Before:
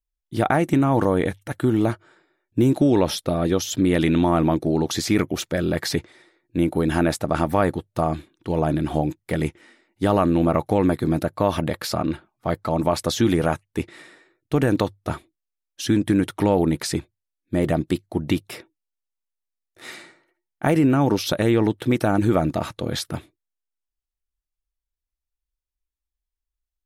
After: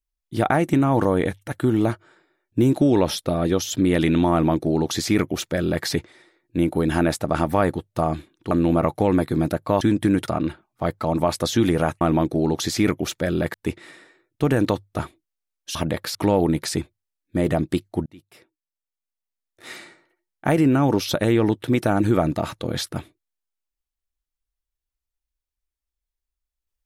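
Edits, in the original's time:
0:04.32–0:05.85: duplicate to 0:13.65
0:08.51–0:10.22: remove
0:11.52–0:11.92: swap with 0:15.86–0:16.33
0:18.24–0:19.89: fade in

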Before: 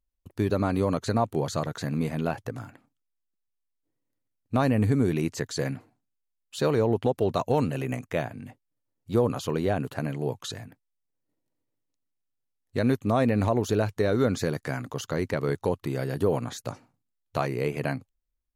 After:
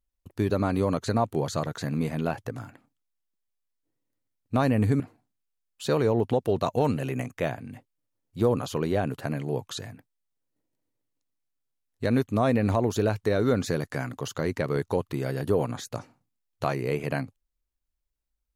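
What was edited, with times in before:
0:05.00–0:05.73: remove

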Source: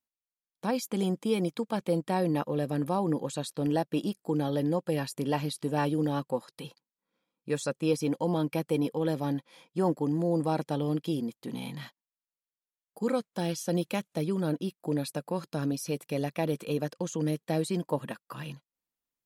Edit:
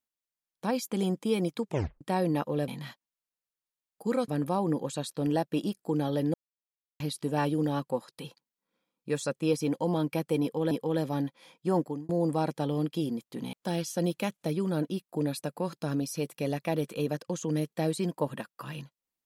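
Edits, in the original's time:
0:01.63: tape stop 0.38 s
0:04.74–0:05.40: silence
0:08.82–0:09.11: repeat, 2 plays
0:09.91–0:10.20: fade out
0:11.64–0:13.24: move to 0:02.68

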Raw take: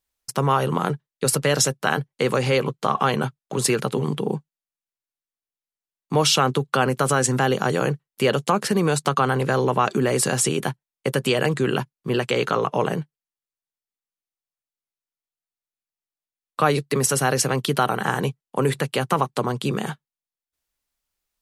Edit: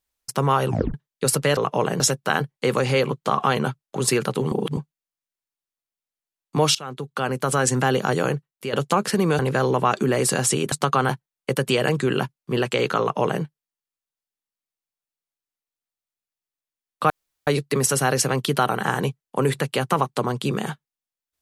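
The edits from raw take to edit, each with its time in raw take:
0:00.67: tape stop 0.27 s
0:04.09–0:04.34: reverse
0:06.32–0:07.25: fade in, from −22 dB
0:07.80–0:08.30: fade out, to −11.5 dB
0:08.96–0:09.33: move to 0:10.66
0:12.57–0:13.00: duplicate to 0:01.57
0:16.67: splice in room tone 0.37 s

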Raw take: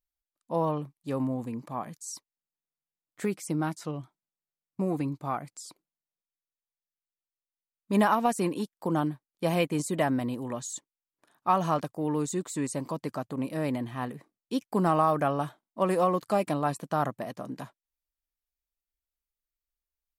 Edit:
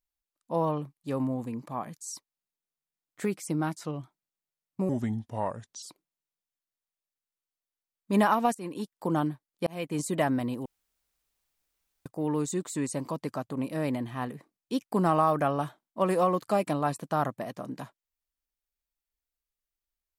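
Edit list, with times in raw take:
0:04.89–0:05.63: play speed 79%
0:08.35–0:08.73: fade in, from −20 dB
0:09.47–0:09.84: fade in
0:10.46–0:11.86: fill with room tone

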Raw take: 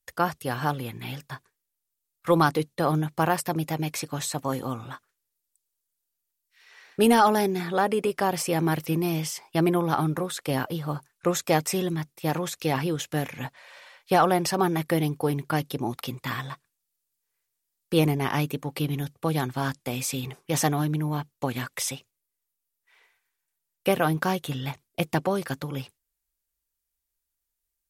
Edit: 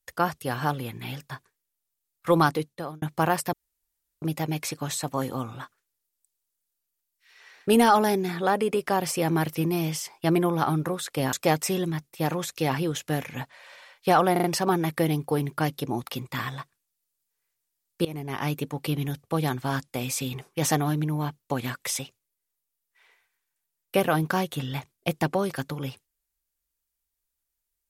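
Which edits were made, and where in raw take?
0:02.46–0:03.02: fade out
0:03.53: splice in room tone 0.69 s
0:10.64–0:11.37: remove
0:14.36: stutter 0.04 s, 4 plays
0:17.97–0:18.54: fade in, from −22 dB

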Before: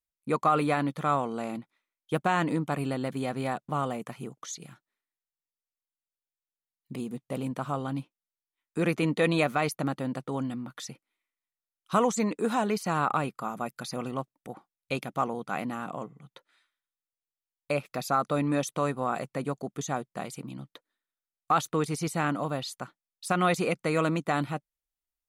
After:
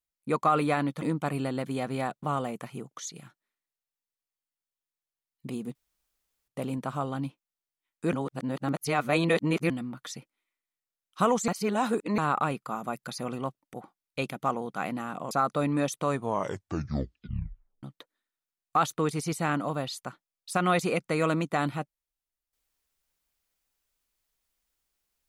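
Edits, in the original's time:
0:01.02–0:02.48: remove
0:07.21: splice in room tone 0.73 s
0:08.86–0:10.43: reverse
0:12.21–0:12.91: reverse
0:16.04–0:18.06: remove
0:18.84: tape stop 1.74 s

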